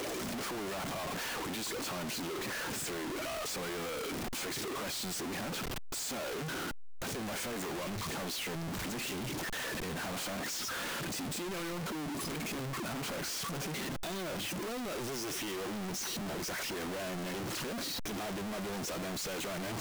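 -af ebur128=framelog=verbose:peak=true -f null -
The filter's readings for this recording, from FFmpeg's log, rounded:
Integrated loudness:
  I:         -36.9 LUFS
  Threshold: -46.8 LUFS
Loudness range:
  LRA:         0.8 LU
  Threshold: -56.8 LUFS
  LRA low:   -37.3 LUFS
  LRA high:  -36.5 LUFS
True peak:
  Peak:      -32.3 dBFS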